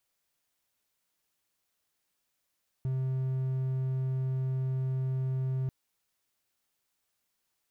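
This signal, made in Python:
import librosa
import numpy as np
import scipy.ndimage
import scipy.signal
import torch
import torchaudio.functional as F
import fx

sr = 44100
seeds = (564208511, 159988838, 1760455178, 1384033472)

y = 10.0 ** (-26.0 / 20.0) * (1.0 - 4.0 * np.abs(np.mod(131.0 * (np.arange(round(2.84 * sr)) / sr) + 0.25, 1.0) - 0.5))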